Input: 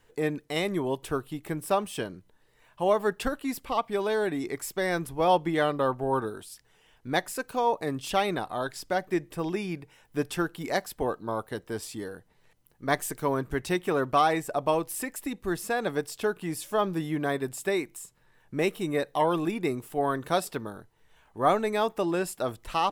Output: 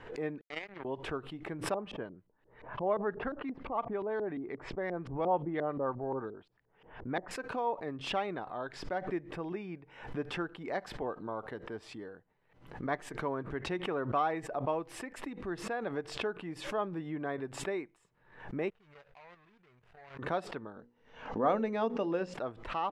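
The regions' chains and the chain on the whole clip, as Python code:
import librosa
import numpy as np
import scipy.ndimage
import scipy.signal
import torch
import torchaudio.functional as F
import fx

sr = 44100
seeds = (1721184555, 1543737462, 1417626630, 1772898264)

y = fx.chain(x, sr, fx.peak_eq(hz=2200.0, db=14.0, octaves=1.2),
    fx.power_curve(exponent=3.0),
    fx.lowpass(hz=8400.0, slope=12), at=(0.41, 0.85))
y = fx.chain(y, sr, fx.bass_treble(bass_db=1, treble_db=3),
    fx.filter_lfo_lowpass(shape='saw_up', hz=5.7, low_hz=340.0, high_hz=5100.0, q=0.96), at=(1.74, 7.31))
y = fx.chain(y, sr, fx.median_filter(points=41),
    fx.tone_stack(knobs='10-0-10'),
    fx.level_steps(step_db=9), at=(18.7, 20.19))
y = fx.chain(y, sr, fx.lowpass_res(hz=5900.0, q=3.5),
    fx.hum_notches(base_hz=60, count=9),
    fx.small_body(hz=(240.0, 490.0, 2800.0), ring_ms=50, db=11), at=(20.76, 22.34))
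y = scipy.signal.sosfilt(scipy.signal.butter(2, 2100.0, 'lowpass', fs=sr, output='sos'), y)
y = fx.low_shelf(y, sr, hz=110.0, db=-8.5)
y = fx.pre_swell(y, sr, db_per_s=94.0)
y = y * librosa.db_to_amplitude(-7.5)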